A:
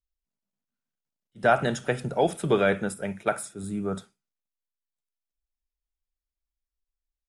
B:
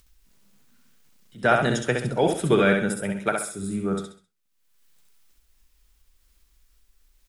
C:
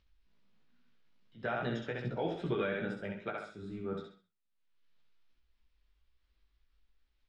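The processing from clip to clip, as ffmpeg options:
-filter_complex "[0:a]equalizer=f=700:w=1.7:g=-6,acompressor=mode=upward:threshold=0.00501:ratio=2.5,asplit=2[s0][s1];[s1]aecho=0:1:66|132|198|264:0.596|0.203|0.0689|0.0234[s2];[s0][s2]amix=inputs=2:normalize=0,volume=1.5"
-af "lowpass=f=4200:w=0.5412,lowpass=f=4200:w=1.3066,alimiter=limit=0.2:level=0:latency=1:release=136,flanger=delay=16.5:depth=2.1:speed=2.4,volume=0.422"

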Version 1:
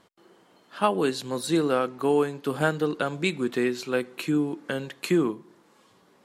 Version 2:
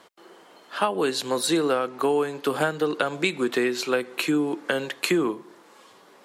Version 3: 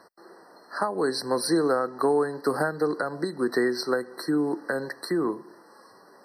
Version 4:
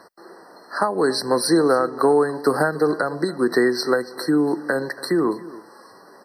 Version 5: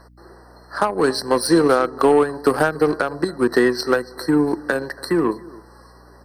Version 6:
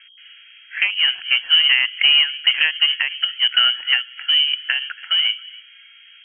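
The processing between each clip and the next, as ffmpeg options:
-filter_complex "[0:a]bass=f=250:g=-14,treble=f=4000:g=-1,acrossover=split=170[s0][s1];[s1]acompressor=threshold=0.0355:ratio=6[s2];[s0][s2]amix=inputs=2:normalize=0,volume=2.82"
-af "alimiter=limit=0.251:level=0:latency=1:release=297,afftfilt=real='re*eq(mod(floor(b*sr/1024/2000),2),0)':imag='im*eq(mod(floor(b*sr/1024/2000),2),0)':win_size=1024:overlap=0.75"
-af "aecho=1:1:282:0.119,volume=2"
-af "aeval=exprs='val(0)+0.00501*(sin(2*PI*60*n/s)+sin(2*PI*2*60*n/s)/2+sin(2*PI*3*60*n/s)/3+sin(2*PI*4*60*n/s)/4+sin(2*PI*5*60*n/s)/5)':c=same,aeval=exprs='0.501*(cos(1*acos(clip(val(0)/0.501,-1,1)))-cos(1*PI/2))+0.0282*(cos(7*acos(clip(val(0)/0.501,-1,1)))-cos(7*PI/2))':c=same,volume=1.26"
-af "lowpass=f=2800:t=q:w=0.5098,lowpass=f=2800:t=q:w=0.6013,lowpass=f=2800:t=q:w=0.9,lowpass=f=2800:t=q:w=2.563,afreqshift=-3300"

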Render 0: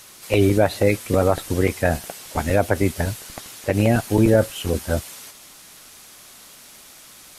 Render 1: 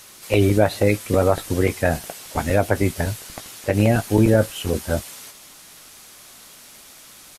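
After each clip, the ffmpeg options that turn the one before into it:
-filter_complex "[0:a]asplit=2[s0][s1];[s1]adelay=19,volume=0.224[s2];[s0][s2]amix=inputs=2:normalize=0"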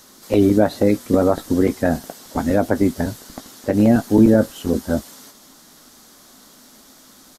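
-af "equalizer=f=100:t=o:w=0.67:g=-6,equalizer=f=250:t=o:w=0.67:g=10,equalizer=f=2500:t=o:w=0.67:g=-11,equalizer=f=10000:t=o:w=0.67:g=-7"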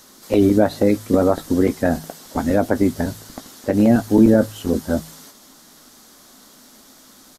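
-af "bandreject=f=53.41:t=h:w=4,bandreject=f=106.82:t=h:w=4,bandreject=f=160.23:t=h:w=4"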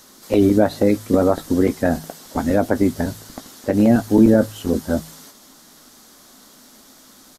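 -af anull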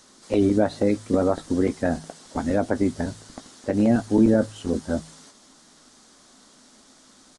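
-af "aresample=22050,aresample=44100,volume=0.562"

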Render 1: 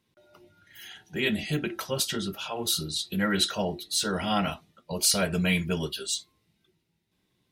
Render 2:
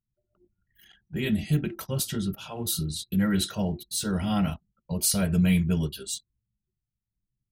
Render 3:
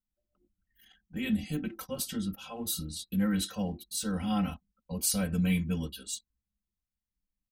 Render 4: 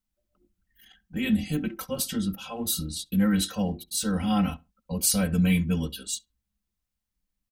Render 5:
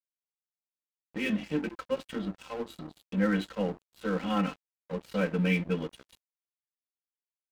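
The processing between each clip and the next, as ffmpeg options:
-af "equalizer=f=5700:t=o:w=1.8:g=-7.5,anlmdn=0.0398,bass=f=250:g=14,treble=f=4000:g=10,volume=0.562"
-af "aecho=1:1:3.9:0.93,volume=0.447"
-filter_complex "[0:a]asplit=2[s0][s1];[s1]adelay=68,lowpass=f=1700:p=1,volume=0.0841,asplit=2[s2][s3];[s3]adelay=68,lowpass=f=1700:p=1,volume=0.21[s4];[s0][s2][s4]amix=inputs=3:normalize=0,volume=1.88"
-af "highpass=f=200:w=0.5412,highpass=f=200:w=1.3066,equalizer=f=230:t=q:w=4:g=-8,equalizer=f=480:t=q:w=4:g=4,equalizer=f=730:t=q:w=4:g=-7,lowpass=f=2800:w=0.5412,lowpass=f=2800:w=1.3066,aeval=exprs='val(0)+0.00126*(sin(2*PI*60*n/s)+sin(2*PI*2*60*n/s)/2+sin(2*PI*3*60*n/s)/3+sin(2*PI*4*60*n/s)/4+sin(2*PI*5*60*n/s)/5)':c=same,aeval=exprs='sgn(val(0))*max(abs(val(0))-0.00668,0)':c=same,volume=1.33"

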